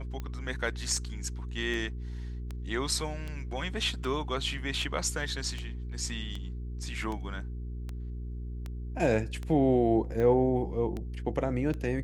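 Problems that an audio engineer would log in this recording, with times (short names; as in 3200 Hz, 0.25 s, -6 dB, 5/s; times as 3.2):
hum 60 Hz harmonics 7 -37 dBFS
tick 78 rpm -24 dBFS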